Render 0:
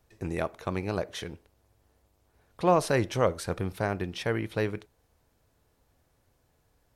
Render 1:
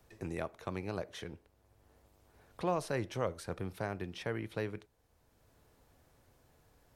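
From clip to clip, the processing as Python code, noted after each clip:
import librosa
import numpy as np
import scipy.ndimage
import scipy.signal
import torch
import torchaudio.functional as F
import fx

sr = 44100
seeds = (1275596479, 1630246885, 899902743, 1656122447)

y = fx.band_squash(x, sr, depth_pct=40)
y = F.gain(torch.from_numpy(y), -8.5).numpy()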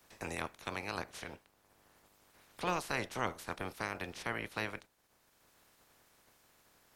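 y = fx.spec_clip(x, sr, under_db=21)
y = F.gain(torch.from_numpy(y), -1.0).numpy()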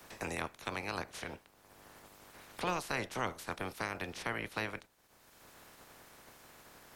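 y = fx.band_squash(x, sr, depth_pct=40)
y = F.gain(torch.from_numpy(y), 1.0).numpy()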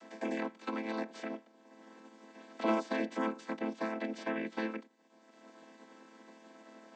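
y = fx.chord_vocoder(x, sr, chord='minor triad', root=57)
y = F.gain(torch.from_numpy(y), 4.0).numpy()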